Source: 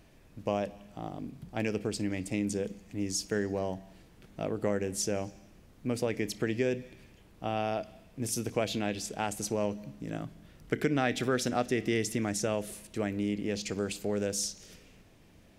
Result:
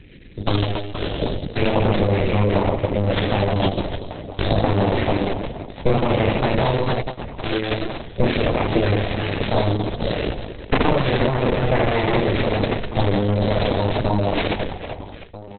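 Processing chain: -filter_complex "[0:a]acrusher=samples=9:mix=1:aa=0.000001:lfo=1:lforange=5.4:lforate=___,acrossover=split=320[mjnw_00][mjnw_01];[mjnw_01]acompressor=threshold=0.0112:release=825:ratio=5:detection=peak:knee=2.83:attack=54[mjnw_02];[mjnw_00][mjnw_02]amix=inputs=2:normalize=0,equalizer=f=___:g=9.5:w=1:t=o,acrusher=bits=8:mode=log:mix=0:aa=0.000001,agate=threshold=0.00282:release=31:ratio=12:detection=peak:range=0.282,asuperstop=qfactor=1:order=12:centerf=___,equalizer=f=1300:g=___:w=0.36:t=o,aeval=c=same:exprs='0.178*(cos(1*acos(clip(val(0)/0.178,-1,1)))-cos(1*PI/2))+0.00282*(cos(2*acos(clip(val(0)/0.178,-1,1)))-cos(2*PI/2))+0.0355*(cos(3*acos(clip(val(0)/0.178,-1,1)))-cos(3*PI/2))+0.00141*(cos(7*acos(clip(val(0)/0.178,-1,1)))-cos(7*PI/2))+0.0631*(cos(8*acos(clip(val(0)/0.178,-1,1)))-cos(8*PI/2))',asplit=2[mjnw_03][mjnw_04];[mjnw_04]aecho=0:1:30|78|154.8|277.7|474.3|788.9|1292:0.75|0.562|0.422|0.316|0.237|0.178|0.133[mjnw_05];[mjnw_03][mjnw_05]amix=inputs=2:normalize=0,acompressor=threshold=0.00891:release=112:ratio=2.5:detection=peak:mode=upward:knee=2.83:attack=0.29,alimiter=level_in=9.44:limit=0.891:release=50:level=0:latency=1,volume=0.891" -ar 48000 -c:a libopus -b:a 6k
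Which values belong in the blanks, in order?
0.32, 14000, 860, -13.5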